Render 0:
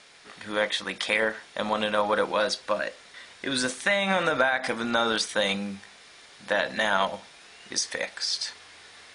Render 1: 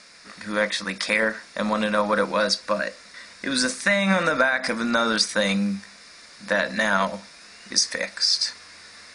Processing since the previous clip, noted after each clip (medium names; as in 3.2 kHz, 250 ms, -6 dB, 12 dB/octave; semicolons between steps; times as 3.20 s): graphic EQ with 31 bands 125 Hz -10 dB, 200 Hz +6 dB, 400 Hz -8 dB, 800 Hz -9 dB, 3.15 kHz -12 dB, 5 kHz +6 dB; trim +4.5 dB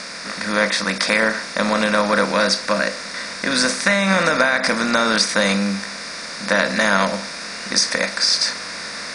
spectral levelling over time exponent 0.6; trim +1 dB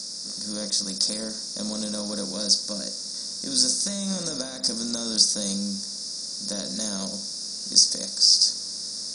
FFT filter 300 Hz 0 dB, 2.3 kHz -25 dB, 5.1 kHz +11 dB; trim -9 dB